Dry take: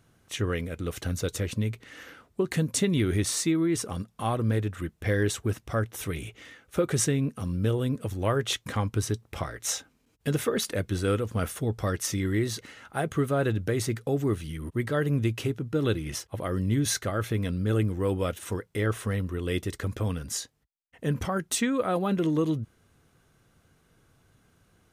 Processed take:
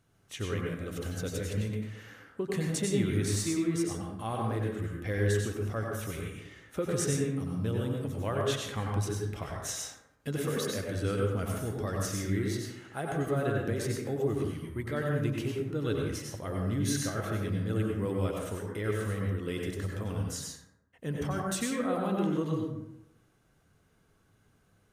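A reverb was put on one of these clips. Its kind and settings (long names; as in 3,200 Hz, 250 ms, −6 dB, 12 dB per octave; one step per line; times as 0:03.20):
dense smooth reverb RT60 0.85 s, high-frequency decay 0.45×, pre-delay 80 ms, DRR −1 dB
level −7.5 dB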